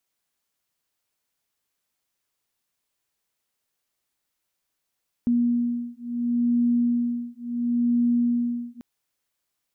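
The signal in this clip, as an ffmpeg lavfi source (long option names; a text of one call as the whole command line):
ffmpeg -f lavfi -i "aevalsrc='0.0668*(sin(2*PI*239*t)+sin(2*PI*239.72*t))':duration=3.54:sample_rate=44100" out.wav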